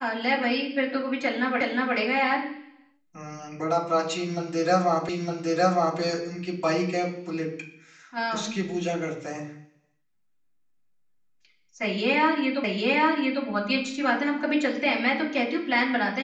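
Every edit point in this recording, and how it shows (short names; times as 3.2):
1.61 repeat of the last 0.36 s
5.09 repeat of the last 0.91 s
12.64 repeat of the last 0.8 s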